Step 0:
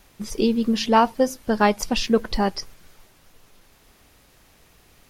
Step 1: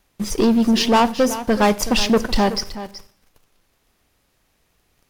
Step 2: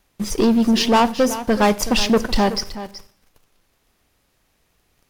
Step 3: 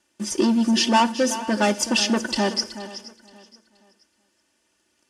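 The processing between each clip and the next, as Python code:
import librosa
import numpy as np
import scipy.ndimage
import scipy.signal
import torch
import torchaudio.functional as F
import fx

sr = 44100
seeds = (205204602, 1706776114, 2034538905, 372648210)

y1 = fx.leveller(x, sr, passes=3)
y1 = y1 + 10.0 ** (-13.5 / 20.0) * np.pad(y1, (int(375 * sr / 1000.0), 0))[:len(y1)]
y1 = fx.rev_schroeder(y1, sr, rt60_s=0.56, comb_ms=31, drr_db=18.0)
y1 = y1 * librosa.db_to_amplitude(-4.0)
y2 = y1
y3 = fx.cabinet(y2, sr, low_hz=220.0, low_slope=12, high_hz=9500.0, hz=(260.0, 570.0, 820.0, 1200.0, 2200.0, 3900.0), db=(-7, -9, -6, -8, -8, -8))
y3 = y3 + 0.88 * np.pad(y3, (int(3.4 * sr / 1000.0), 0))[:len(y3)]
y3 = fx.echo_feedback(y3, sr, ms=475, feedback_pct=35, wet_db=-18.5)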